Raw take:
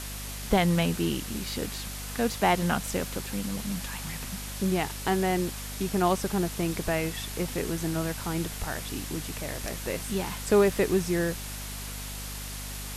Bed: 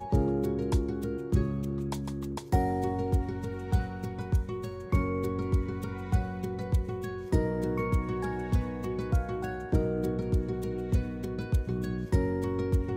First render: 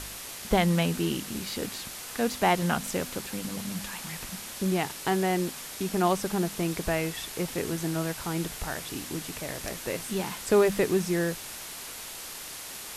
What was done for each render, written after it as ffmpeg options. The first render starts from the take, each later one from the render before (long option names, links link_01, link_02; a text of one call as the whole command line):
ffmpeg -i in.wav -af "bandreject=frequency=50:width_type=h:width=4,bandreject=frequency=100:width_type=h:width=4,bandreject=frequency=150:width_type=h:width=4,bandreject=frequency=200:width_type=h:width=4,bandreject=frequency=250:width_type=h:width=4" out.wav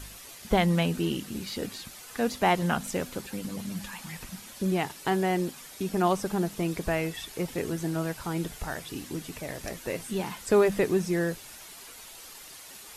ffmpeg -i in.wav -af "afftdn=noise_reduction=9:noise_floor=-41" out.wav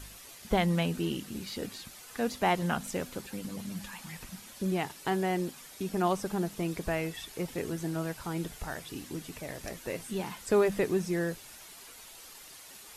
ffmpeg -i in.wav -af "volume=-3.5dB" out.wav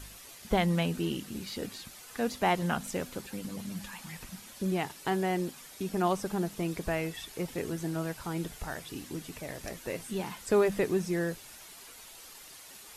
ffmpeg -i in.wav -af anull out.wav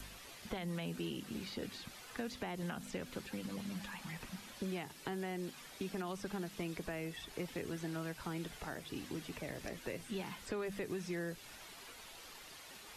ffmpeg -i in.wav -filter_complex "[0:a]alimiter=limit=-21.5dB:level=0:latency=1:release=92,acrossover=split=170|500|1300|4700[link_01][link_02][link_03][link_04][link_05];[link_01]acompressor=threshold=-52dB:ratio=4[link_06];[link_02]acompressor=threshold=-43dB:ratio=4[link_07];[link_03]acompressor=threshold=-52dB:ratio=4[link_08];[link_04]acompressor=threshold=-48dB:ratio=4[link_09];[link_05]acompressor=threshold=-60dB:ratio=4[link_10];[link_06][link_07][link_08][link_09][link_10]amix=inputs=5:normalize=0" out.wav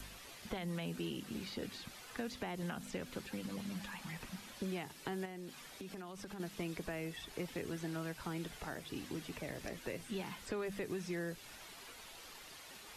ffmpeg -i in.wav -filter_complex "[0:a]asettb=1/sr,asplit=3[link_01][link_02][link_03];[link_01]atrim=end=5.254[link_04];[link_02]atrim=start=5.25:end=6.4,asetpts=PTS-STARTPTS,afade=type=in:duration=0.004:curve=qsin,afade=type=out:start_time=1.146:duration=0.004:curve=qsin,acompressor=threshold=-43dB:ratio=6:attack=3.2:release=140:knee=1:detection=peak[link_05];[link_03]atrim=start=6.396[link_06];[link_04][link_05]acrossfade=duration=0.004:curve1=hsin:curve2=qsin[link_07];[link_07][link_06]acrossfade=duration=0.004:curve1=qsin:curve2=hsin" out.wav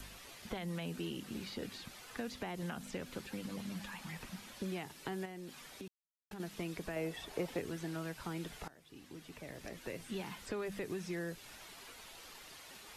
ffmpeg -i in.wav -filter_complex "[0:a]asettb=1/sr,asplit=3[link_01][link_02][link_03];[link_01]atrim=end=6.964[link_04];[link_02]atrim=start=6.96:end=7.6,asetpts=PTS-STARTPTS,afade=type=in:duration=0.004:curve=qsin,afade=type=out:start_time=0.636:duration=0.004:curve=qsin,equalizer=frequency=620:width=0.84:gain=8[link_05];[link_03]atrim=start=7.596[link_06];[link_04][link_05]acrossfade=duration=0.004:curve1=hsin:curve2=qsin[link_07];[link_07][link_06]acrossfade=duration=0.004:curve1=qsin:curve2=hsin,asplit=4[link_08][link_09][link_10][link_11];[link_08]atrim=end=5.88,asetpts=PTS-STARTPTS,afade=type=out:start_time=5.876:duration=0.004:curve=hsin[link_12];[link_09]atrim=start=5.88:end=6.31,asetpts=PTS-STARTPTS,volume=0[link_13];[link_10]atrim=start=6.31:end=8.68,asetpts=PTS-STARTPTS,afade=type=in:duration=0.004:curve=hsin,afade=type=out:start_time=2.366:duration=0.004:curve=hsin:silence=0.1[link_14];[link_11]atrim=start=8.68,asetpts=PTS-STARTPTS,afade=type=in:duration=1.42:silence=0.1[link_15];[link_12][link_13][link_14][link_15]concat=n=4:v=0:a=1" out.wav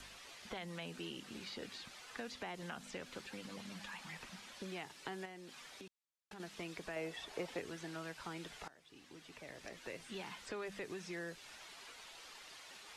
ffmpeg -i in.wav -af "lowpass=8000,lowshelf=frequency=360:gain=-10.5" out.wav